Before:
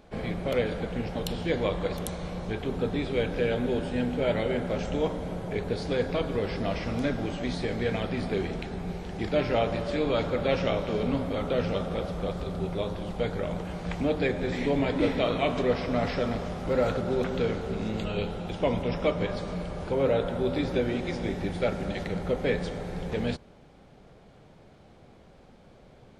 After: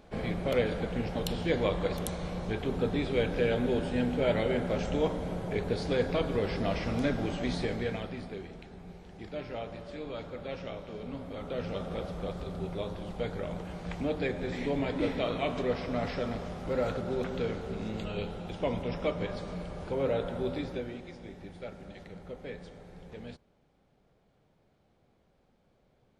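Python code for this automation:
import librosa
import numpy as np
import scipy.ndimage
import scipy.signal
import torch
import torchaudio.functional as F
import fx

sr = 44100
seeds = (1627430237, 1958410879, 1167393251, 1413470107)

y = fx.gain(x, sr, db=fx.line((7.61, -1.0), (8.42, -13.0), (11.03, -13.0), (11.93, -5.0), (20.47, -5.0), (21.14, -15.0)))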